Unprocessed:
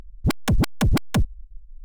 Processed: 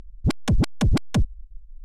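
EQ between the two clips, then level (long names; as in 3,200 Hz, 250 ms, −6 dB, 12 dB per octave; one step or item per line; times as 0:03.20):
low-pass filter 7,900 Hz 12 dB per octave
parametric band 1,400 Hz −4.5 dB 2.5 octaves
0.0 dB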